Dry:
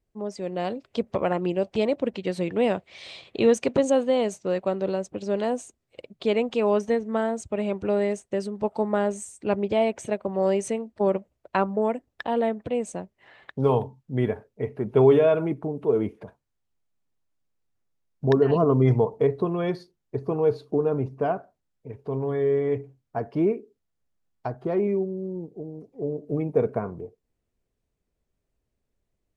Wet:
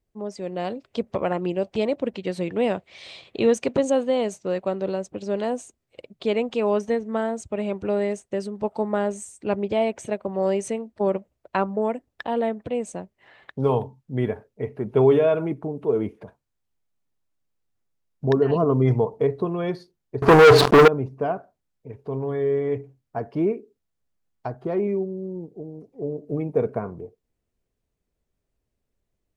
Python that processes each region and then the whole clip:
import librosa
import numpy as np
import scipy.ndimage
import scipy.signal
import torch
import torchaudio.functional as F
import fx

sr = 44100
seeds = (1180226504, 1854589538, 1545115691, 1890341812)

y = fx.chain(x, sr, fx.leveller(passes=5),
    fx.peak_eq(hz=1300.0, db=7.5, octaves=2.7),
    fx.sustainer(db_per_s=58.0), at=(20.22, 20.88))